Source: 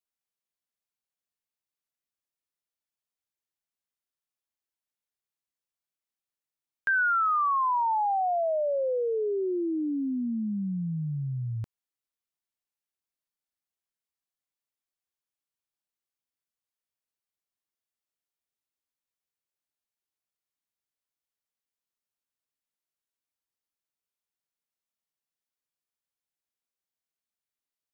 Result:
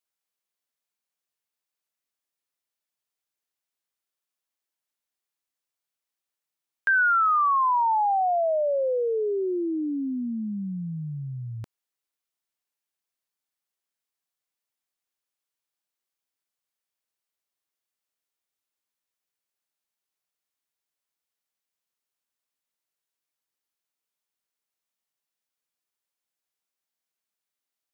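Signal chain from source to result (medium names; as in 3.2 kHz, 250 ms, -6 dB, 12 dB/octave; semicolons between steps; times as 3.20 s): bass shelf 200 Hz -9 dB; trim +4 dB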